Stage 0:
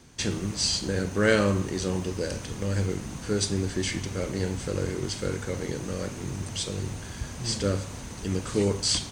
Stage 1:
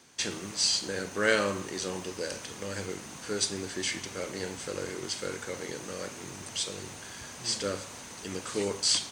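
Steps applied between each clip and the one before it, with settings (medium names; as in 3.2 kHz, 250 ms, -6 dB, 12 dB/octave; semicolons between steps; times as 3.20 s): high-pass 640 Hz 6 dB/octave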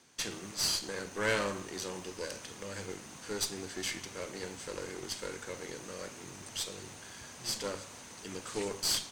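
valve stage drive 23 dB, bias 0.8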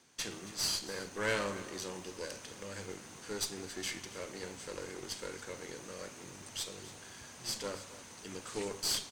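delay 275 ms -16.5 dB; trim -2.5 dB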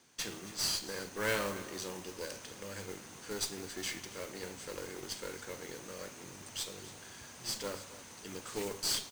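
modulation noise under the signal 13 dB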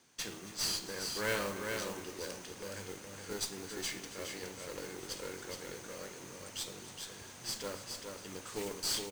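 delay 418 ms -5 dB; trim -1.5 dB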